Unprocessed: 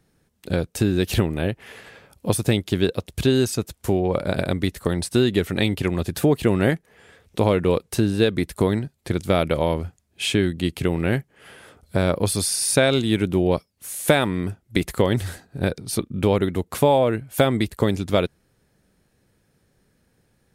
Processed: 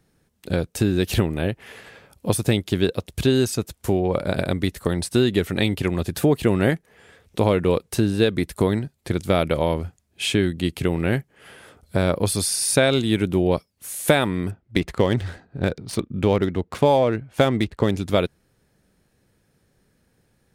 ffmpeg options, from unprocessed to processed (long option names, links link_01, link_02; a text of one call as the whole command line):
ffmpeg -i in.wav -filter_complex "[0:a]asettb=1/sr,asplit=3[link_01][link_02][link_03];[link_01]atrim=end=14.514[link_04];[link_02]atrim=start=14.51:end=17.97,asetpts=PTS-STARTPTS,afade=type=in:duration=0.004:curve=qsin,afade=type=out:start_time=3.456:duration=0.004:curve=qsin,adynamicsmooth=sensitivity=5:basefreq=3000[link_05];[link_03]atrim=start=17.966[link_06];[link_04][link_05]acrossfade=duration=0.004:curve1=hsin:curve2=qsin[link_07];[link_07][link_06]acrossfade=duration=0.004:curve1=qsin:curve2=hsin" out.wav